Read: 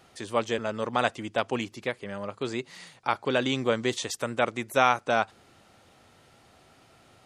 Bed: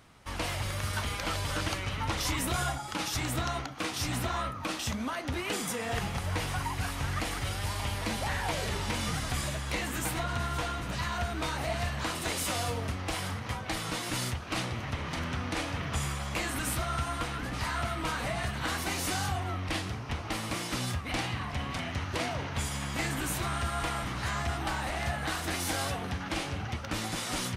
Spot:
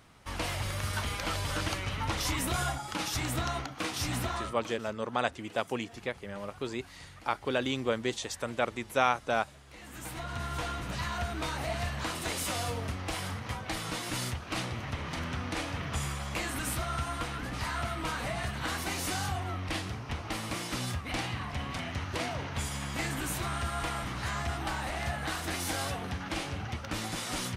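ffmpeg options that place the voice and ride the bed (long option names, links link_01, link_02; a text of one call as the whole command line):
ffmpeg -i stem1.wav -i stem2.wav -filter_complex "[0:a]adelay=4200,volume=-4.5dB[link_01];[1:a]volume=18dB,afade=type=out:start_time=4.22:duration=0.57:silence=0.105925,afade=type=in:start_time=9.73:duration=0.96:silence=0.11885[link_02];[link_01][link_02]amix=inputs=2:normalize=0" out.wav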